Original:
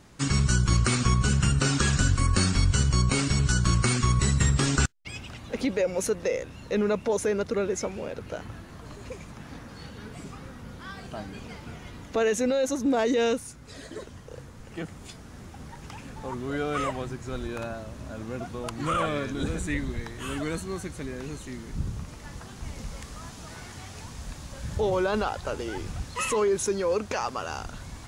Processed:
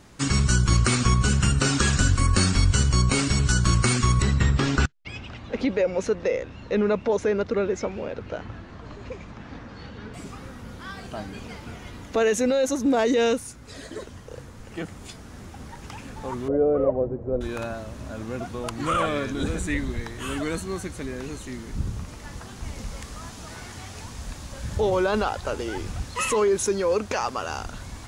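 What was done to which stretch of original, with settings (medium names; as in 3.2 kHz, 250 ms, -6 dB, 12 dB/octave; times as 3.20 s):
4.22–10.14 s: Gaussian low-pass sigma 1.6 samples
16.48–17.41 s: resonant low-pass 530 Hz, resonance Q 3.5
whole clip: peaking EQ 150 Hz -5.5 dB 0.24 oct; trim +3 dB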